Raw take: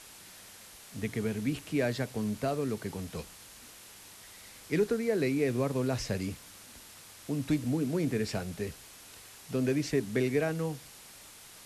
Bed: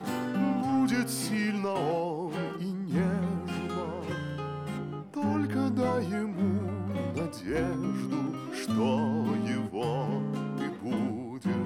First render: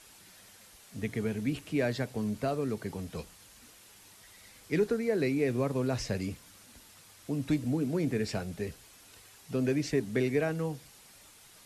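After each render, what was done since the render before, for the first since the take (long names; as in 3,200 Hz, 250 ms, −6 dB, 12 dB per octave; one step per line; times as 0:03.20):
broadband denoise 6 dB, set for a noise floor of −52 dBFS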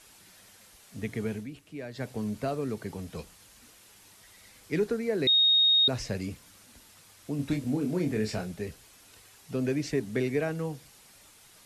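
0:01.35–0:02.06: duck −10.5 dB, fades 0.13 s
0:05.27–0:05.88: beep over 3,730 Hz −18.5 dBFS
0:07.36–0:08.52: double-tracking delay 28 ms −5 dB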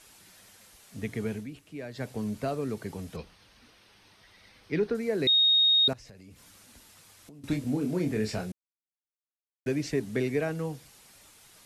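0:03.16–0:04.95: Savitzky-Golay smoothing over 15 samples
0:05.93–0:07.44: downward compressor 16 to 1, threshold −46 dBFS
0:08.52–0:09.66: silence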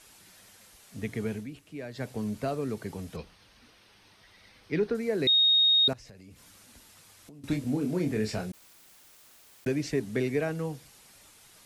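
0:08.39–0:09.72: background raised ahead of every attack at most 21 dB per second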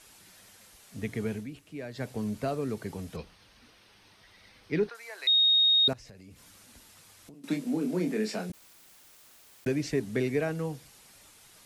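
0:04.89–0:05.85: Chebyshev high-pass filter 890 Hz, order 3
0:07.34–0:08.50: Butterworth high-pass 160 Hz 72 dB per octave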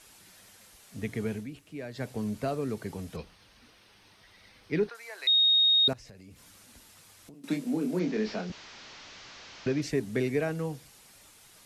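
0:07.99–0:09.82: linear delta modulator 32 kbit/s, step −41.5 dBFS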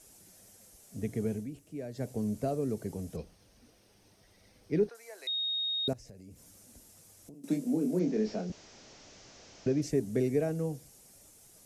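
flat-topped bell 2,000 Hz −11 dB 2.6 octaves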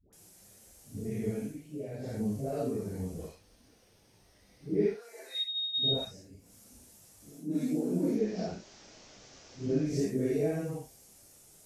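random phases in long frames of 200 ms
all-pass dispersion highs, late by 129 ms, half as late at 640 Hz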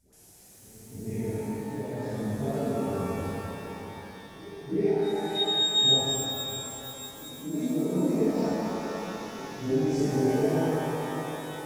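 backwards echo 321 ms −18.5 dB
reverb with rising layers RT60 3.8 s, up +12 semitones, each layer −8 dB, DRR −3 dB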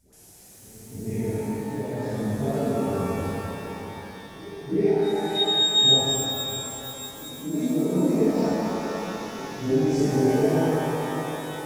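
level +4 dB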